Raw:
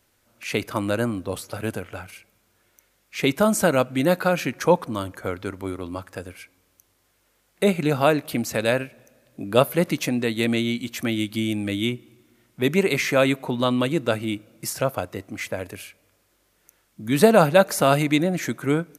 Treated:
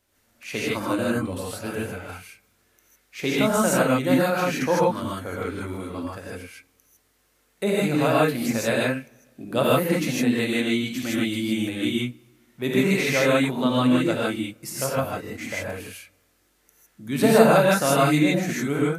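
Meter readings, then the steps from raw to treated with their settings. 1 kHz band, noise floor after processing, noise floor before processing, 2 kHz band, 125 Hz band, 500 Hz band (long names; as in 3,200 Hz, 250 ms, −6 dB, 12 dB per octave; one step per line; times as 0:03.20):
0.0 dB, −66 dBFS, −66 dBFS, +1.0 dB, −0.5 dB, −1.0 dB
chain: reverb whose tail is shaped and stops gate 180 ms rising, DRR −6 dB
level −6.5 dB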